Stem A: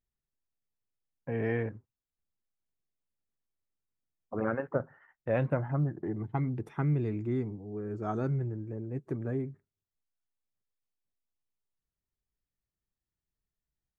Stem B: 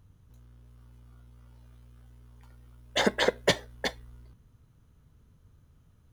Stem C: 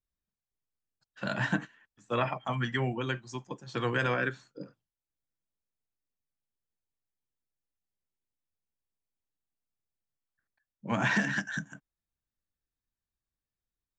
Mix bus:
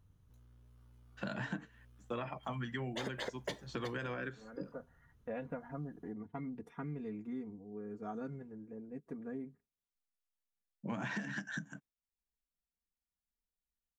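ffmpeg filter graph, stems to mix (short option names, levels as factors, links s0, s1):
-filter_complex "[0:a]aecho=1:1:4.2:0.97,volume=0.299[s0];[1:a]volume=0.398[s1];[2:a]agate=range=0.0224:threshold=0.00178:ratio=3:detection=peak,highpass=150,lowshelf=f=360:g=7.5,volume=0.708,asplit=2[s2][s3];[s3]apad=whole_len=616813[s4];[s0][s4]sidechaincompress=threshold=0.00447:ratio=8:attack=16:release=500[s5];[s5][s1][s2]amix=inputs=3:normalize=0,acompressor=threshold=0.0141:ratio=6"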